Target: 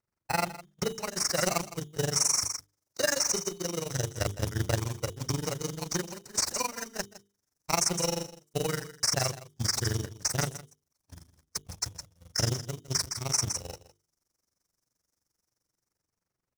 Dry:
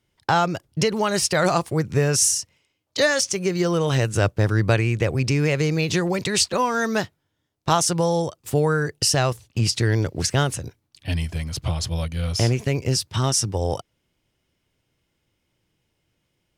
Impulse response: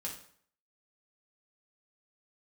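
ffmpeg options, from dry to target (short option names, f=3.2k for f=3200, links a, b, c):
-filter_complex "[0:a]aeval=exprs='val(0)+0.5*0.075*sgn(val(0))':c=same,equalizer=f=5.7k:t=o:w=0.38:g=11,agate=range=-47dB:threshold=-17dB:ratio=16:detection=peak,tremolo=f=23:d=0.974,bandreject=f=50:t=h:w=6,bandreject=f=100:t=h:w=6,bandreject=f=150:t=h:w=6,bandreject=f=200:t=h:w=6,bandreject=f=250:t=h:w=6,bandreject=f=300:t=h:w=6,bandreject=f=350:t=h:w=6,bandreject=f=400:t=h:w=6,bandreject=f=450:t=h:w=6,asplit=2[a][b];[b]aecho=0:1:160:0.158[c];[a][c]amix=inputs=2:normalize=0,acrossover=split=2900[d][e];[e]acompressor=threshold=-23dB:ratio=4:attack=1:release=60[f];[d][f]amix=inputs=2:normalize=0,highshelf=f=8.2k:g=-8.5,acrossover=split=6100[g][h];[g]acrusher=samples=13:mix=1:aa=0.000001[i];[h]dynaudnorm=f=150:g=13:m=15.5dB[j];[i][j]amix=inputs=2:normalize=0,volume=-7dB"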